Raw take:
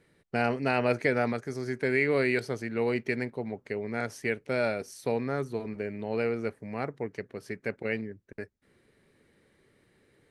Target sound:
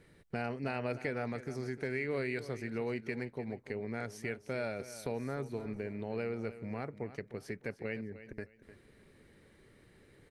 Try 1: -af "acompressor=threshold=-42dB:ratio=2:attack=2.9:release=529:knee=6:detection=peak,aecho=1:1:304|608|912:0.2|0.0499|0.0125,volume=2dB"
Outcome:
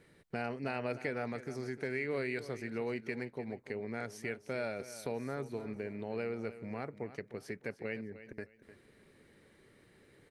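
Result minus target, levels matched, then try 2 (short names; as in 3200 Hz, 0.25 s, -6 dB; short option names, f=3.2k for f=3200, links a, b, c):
125 Hz band -2.5 dB
-af "acompressor=threshold=-42dB:ratio=2:attack=2.9:release=529:knee=6:detection=peak,lowshelf=f=92:g=9.5,aecho=1:1:304|608|912:0.2|0.0499|0.0125,volume=2dB"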